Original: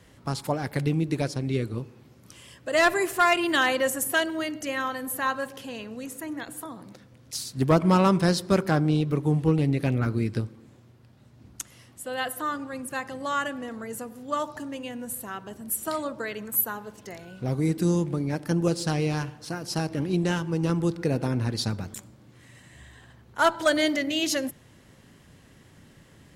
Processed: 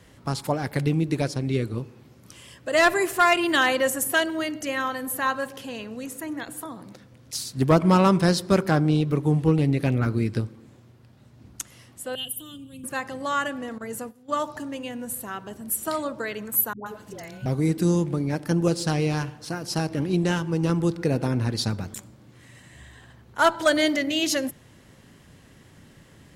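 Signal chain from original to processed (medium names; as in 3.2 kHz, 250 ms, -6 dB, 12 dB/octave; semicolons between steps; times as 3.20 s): 12.15–12.84 s: FFT filter 170 Hz 0 dB, 910 Hz -26 dB, 2 kHz -27 dB, 3.1 kHz +9 dB, 4.7 kHz -19 dB, 9.7 kHz +3 dB; 13.78–14.45 s: gate -38 dBFS, range -14 dB; 16.73–17.46 s: phase dispersion highs, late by 130 ms, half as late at 540 Hz; trim +2 dB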